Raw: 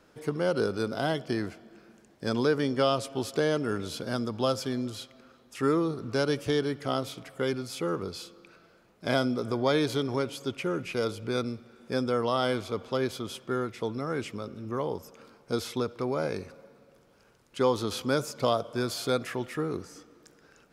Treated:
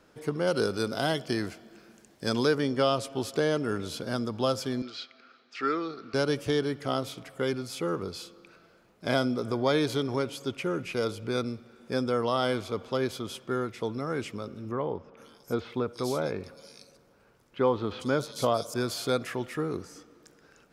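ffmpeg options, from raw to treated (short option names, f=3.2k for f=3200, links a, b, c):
-filter_complex "[0:a]asettb=1/sr,asplit=3[a][b][c];[a]atrim=end=0.474[d];[b]atrim=start=0.47:end=2.55,asetpts=PTS-STARTPTS,afade=t=in:d=0.004:c=qsin,afade=t=out:st=2.076:d=0.004:c=qsin,highshelf=f=2.9k:g=7.5[e];[c]atrim=start=2.546[f];[d][e]acrossfade=d=0.004:c1=hsin:c2=qsin[g];[g][f]acrossfade=d=0.004:c1=qsin:c2=hsin,asettb=1/sr,asplit=3[h][i][j];[h]atrim=end=4.824[k];[i]atrim=start=4.82:end=6.14,asetpts=PTS-STARTPTS,afade=t=in:d=0.004:c=qsin,afade=t=out:st=1.316:d=0.004:c=qsin,highpass=360,equalizer=f=370:t=q:w=4:g=-3,equalizer=f=550:t=q:w=4:g=-8,equalizer=f=950:t=q:w=4:g=-9,equalizer=f=1.4k:t=q:w=4:g=6,equalizer=f=2.3k:t=q:w=4:g=6,equalizer=f=4.5k:t=q:w=4:g=6,lowpass=f=5.3k:w=0.5412,lowpass=f=5.3k:w=1.3066[l];[j]atrim=start=6.136[m];[k][l]acrossfade=d=0.004:c1=hsin:c2=qsin[n];[n][m]acrossfade=d=0.004:c1=qsin:c2=hsin,asettb=1/sr,asplit=3[o][p][q];[o]atrim=end=14.724[r];[p]atrim=start=14.72:end=18.74,asetpts=PTS-STARTPTS,afade=t=in:d=0.004:c=qsin,afade=t=out:st=4.016:d=0.004:c=qsin,acrossover=split=3300[s][t];[t]adelay=450[u];[s][u]amix=inputs=2:normalize=0,atrim=end_sample=177282[v];[q]atrim=start=18.736[w];[r][v]acrossfade=d=0.004:c1=hsin:c2=qsin[x];[x][w]acrossfade=d=0.004:c1=qsin:c2=hsin"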